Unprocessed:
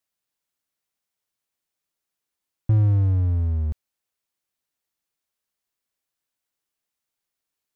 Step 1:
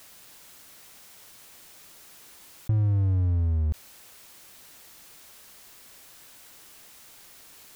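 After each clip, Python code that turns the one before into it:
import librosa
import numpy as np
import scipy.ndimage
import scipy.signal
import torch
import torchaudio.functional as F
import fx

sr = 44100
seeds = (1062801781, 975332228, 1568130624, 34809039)

y = fx.env_flatten(x, sr, amount_pct=70)
y = F.gain(torch.from_numpy(y), -6.0).numpy()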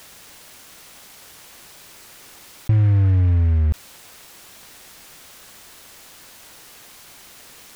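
y = fx.noise_mod_delay(x, sr, seeds[0], noise_hz=1600.0, depth_ms=0.037)
y = F.gain(torch.from_numpy(y), 7.5).numpy()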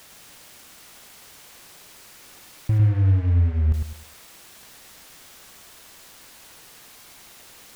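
y = fx.echo_feedback(x, sr, ms=103, feedback_pct=30, wet_db=-5)
y = F.gain(torch.from_numpy(y), -4.0).numpy()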